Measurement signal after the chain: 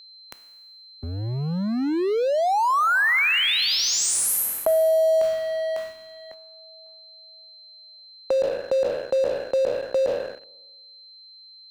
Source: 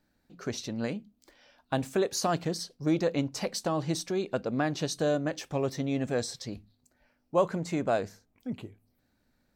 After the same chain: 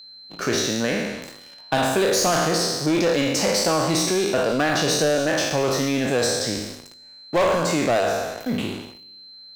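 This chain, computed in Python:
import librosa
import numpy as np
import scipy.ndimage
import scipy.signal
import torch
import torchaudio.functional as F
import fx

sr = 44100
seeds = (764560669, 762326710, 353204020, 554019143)

y = fx.spec_trails(x, sr, decay_s=1.11)
y = fx.low_shelf(y, sr, hz=390.0, db=-7.5)
y = fx.leveller(y, sr, passes=3)
y = y + 10.0 ** (-51.0 / 20.0) * np.sin(2.0 * np.pi * 4100.0 * np.arange(len(y)) / sr)
y = fx.band_squash(y, sr, depth_pct=40)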